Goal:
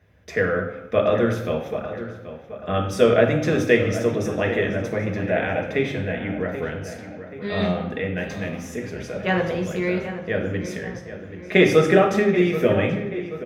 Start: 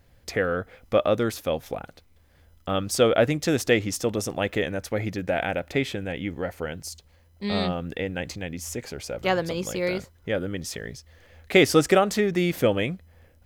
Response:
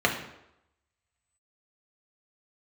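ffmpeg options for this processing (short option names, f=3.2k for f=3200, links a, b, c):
-filter_complex "[0:a]asplit=3[a][b][c];[a]afade=t=out:st=8.16:d=0.02[d];[b]acrusher=bits=6:mix=0:aa=0.5,afade=t=in:st=8.16:d=0.02,afade=t=out:st=8.69:d=0.02[e];[c]afade=t=in:st=8.69:d=0.02[f];[d][e][f]amix=inputs=3:normalize=0,asplit=2[g][h];[h]adelay=781,lowpass=f=3k:p=1,volume=-12dB,asplit=2[i][j];[j]adelay=781,lowpass=f=3k:p=1,volume=0.54,asplit=2[k][l];[l]adelay=781,lowpass=f=3k:p=1,volume=0.54,asplit=2[m][n];[n]adelay=781,lowpass=f=3k:p=1,volume=0.54,asplit=2[o][p];[p]adelay=781,lowpass=f=3k:p=1,volume=0.54,asplit=2[q][r];[r]adelay=781,lowpass=f=3k:p=1,volume=0.54[s];[g][i][k][m][o][q][s]amix=inputs=7:normalize=0[t];[1:a]atrim=start_sample=2205,asetrate=38808,aresample=44100[u];[t][u]afir=irnorm=-1:irlink=0,volume=-13dB"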